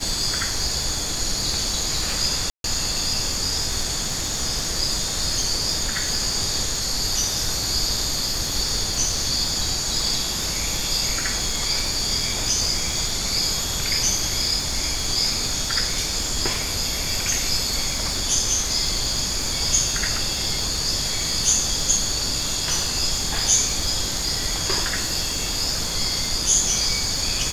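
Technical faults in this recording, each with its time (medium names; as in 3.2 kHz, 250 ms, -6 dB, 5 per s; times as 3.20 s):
crackle 320 per s -31 dBFS
2.50–2.64 s: dropout 142 ms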